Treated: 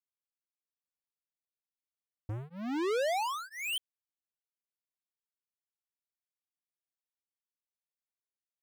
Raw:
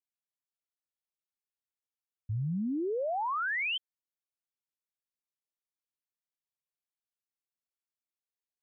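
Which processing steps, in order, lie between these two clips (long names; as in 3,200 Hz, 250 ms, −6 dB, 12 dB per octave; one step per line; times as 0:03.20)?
leveller curve on the samples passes 5
tremolo along a rectified sine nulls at 1 Hz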